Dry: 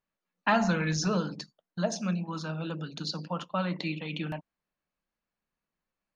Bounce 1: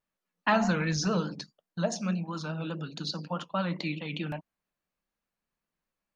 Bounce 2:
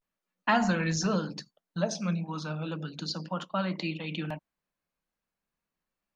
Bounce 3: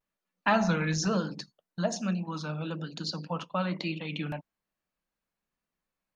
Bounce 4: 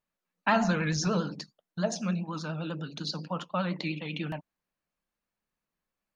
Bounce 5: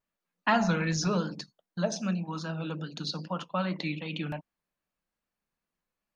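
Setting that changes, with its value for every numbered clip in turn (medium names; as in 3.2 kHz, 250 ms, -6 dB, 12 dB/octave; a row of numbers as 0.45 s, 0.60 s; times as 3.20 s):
vibrato, rate: 4.8 Hz, 0.35 Hz, 1.1 Hz, 10 Hz, 2.5 Hz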